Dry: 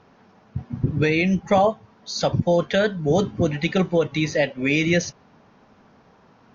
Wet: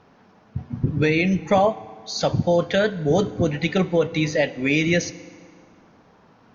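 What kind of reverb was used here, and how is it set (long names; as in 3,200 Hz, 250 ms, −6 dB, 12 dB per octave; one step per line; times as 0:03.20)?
feedback delay network reverb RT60 2 s, low-frequency decay 1.05×, high-frequency decay 0.8×, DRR 16 dB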